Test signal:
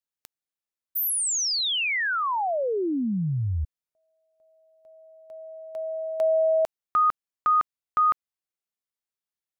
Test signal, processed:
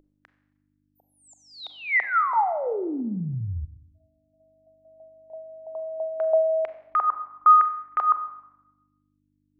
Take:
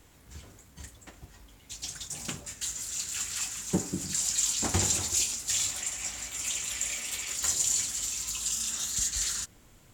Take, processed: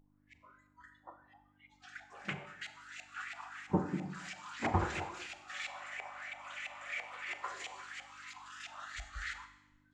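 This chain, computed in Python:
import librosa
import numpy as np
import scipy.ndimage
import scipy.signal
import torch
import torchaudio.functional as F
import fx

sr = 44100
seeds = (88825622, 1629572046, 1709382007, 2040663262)

y = fx.filter_lfo_lowpass(x, sr, shape='saw_up', hz=3.0, low_hz=750.0, high_hz=2300.0, q=3.6)
y = fx.dmg_buzz(y, sr, base_hz=50.0, harmonics=6, level_db=-44.0, tilt_db=0, odd_only=False)
y = fx.noise_reduce_blind(y, sr, reduce_db=25)
y = fx.rev_schroeder(y, sr, rt60_s=0.91, comb_ms=30, drr_db=10.0)
y = y * 10.0 ** (-3.5 / 20.0)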